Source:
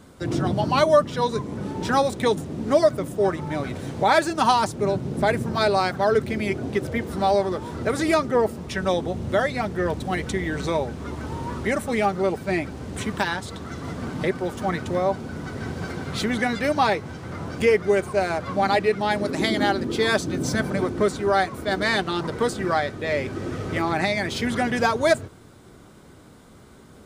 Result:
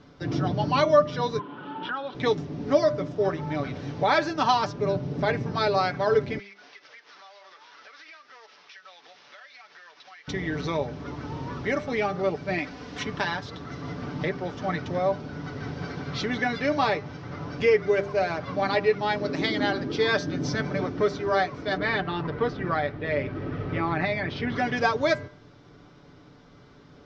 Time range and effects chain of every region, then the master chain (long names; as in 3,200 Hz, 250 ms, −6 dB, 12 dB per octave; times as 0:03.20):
0:01.39–0:02.15: loudspeaker in its box 320–3,200 Hz, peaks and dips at 440 Hz −8 dB, 640 Hz −6 dB, 940 Hz +4 dB, 1,400 Hz +9 dB, 2,100 Hz −8 dB, 3,100 Hz +10 dB + downward compressor 4 to 1, threshold −26 dBFS
0:06.39–0:10.28: variable-slope delta modulation 32 kbit/s + Chebyshev high-pass filter 1,500 Hz + downward compressor, threshold −43 dBFS
0:12.58–0:13.03: tilt shelving filter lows −5 dB, about 690 Hz + comb filter 4.1 ms, depth 46%
0:21.77–0:24.55: low-pass filter 2,900 Hz + low-shelf EQ 73 Hz +9 dB
whole clip: elliptic low-pass filter 5,700 Hz, stop band 50 dB; comb filter 6.9 ms, depth 48%; hum removal 199.9 Hz, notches 14; level −3 dB